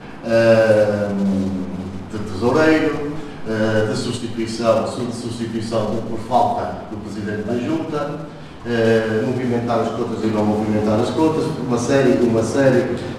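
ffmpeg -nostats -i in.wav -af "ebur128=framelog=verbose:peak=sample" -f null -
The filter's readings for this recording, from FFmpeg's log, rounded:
Integrated loudness:
  I:         -18.9 LUFS
  Threshold: -29.1 LUFS
Loudness range:
  LRA:         4.7 LU
  Threshold: -40.0 LUFS
  LRA low:   -22.4 LUFS
  LRA high:  -17.7 LUFS
Sample peak:
  Peak:       -2.3 dBFS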